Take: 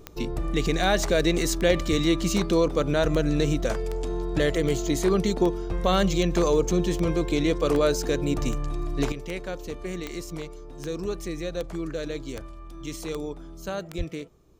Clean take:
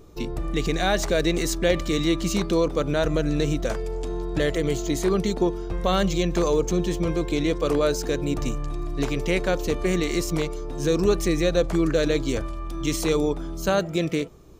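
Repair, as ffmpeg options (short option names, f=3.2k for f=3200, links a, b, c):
-filter_complex "[0:a]adeclick=t=4,asplit=3[a][b][c];[a]afade=t=out:st=1.89:d=0.02[d];[b]highpass=f=140:w=0.5412,highpass=f=140:w=1.3066,afade=t=in:st=1.89:d=0.02,afade=t=out:st=2.01:d=0.02[e];[c]afade=t=in:st=2.01:d=0.02[f];[d][e][f]amix=inputs=3:normalize=0,asplit=3[g][h][i];[g]afade=t=out:st=13.97:d=0.02[j];[h]highpass=f=140:w=0.5412,highpass=f=140:w=1.3066,afade=t=in:st=13.97:d=0.02,afade=t=out:st=14.09:d=0.02[k];[i]afade=t=in:st=14.09:d=0.02[l];[j][k][l]amix=inputs=3:normalize=0,asetnsamples=n=441:p=0,asendcmd='9.12 volume volume 10dB',volume=0dB"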